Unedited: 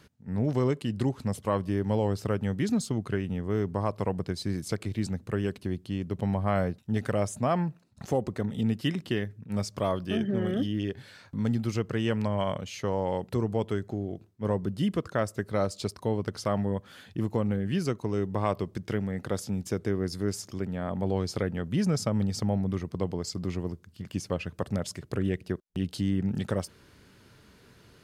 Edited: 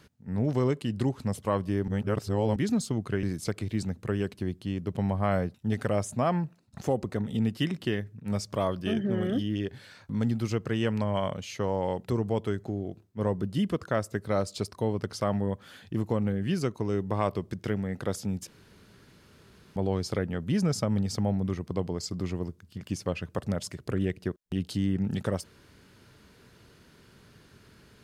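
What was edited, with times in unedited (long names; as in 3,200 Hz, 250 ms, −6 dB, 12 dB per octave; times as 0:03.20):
0:01.88–0:02.56: reverse
0:03.23–0:04.47: remove
0:19.71–0:21.00: fill with room tone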